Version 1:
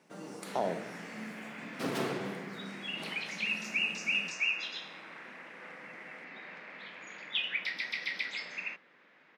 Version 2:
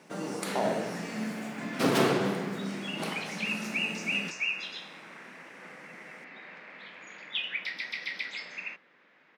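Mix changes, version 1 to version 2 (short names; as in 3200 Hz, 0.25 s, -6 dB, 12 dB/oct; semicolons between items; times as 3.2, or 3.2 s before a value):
speech: send +10.5 dB; first sound +9.5 dB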